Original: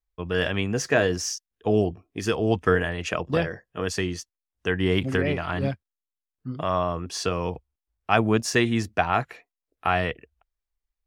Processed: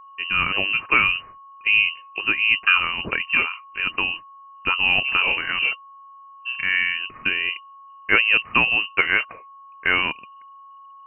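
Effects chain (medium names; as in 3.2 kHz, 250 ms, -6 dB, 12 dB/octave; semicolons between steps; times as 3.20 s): whistle 1.8 kHz -45 dBFS; frequency inversion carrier 2.9 kHz; trim +3 dB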